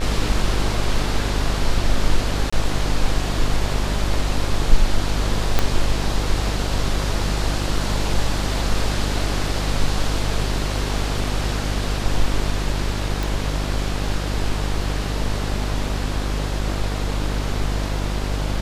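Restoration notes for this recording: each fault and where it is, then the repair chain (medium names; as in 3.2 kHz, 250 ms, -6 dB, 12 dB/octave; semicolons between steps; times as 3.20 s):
buzz 50 Hz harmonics 35 -24 dBFS
2.50–2.52 s: dropout 25 ms
5.59 s: pop -3 dBFS
13.23 s: pop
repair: de-click; de-hum 50 Hz, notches 35; interpolate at 2.50 s, 25 ms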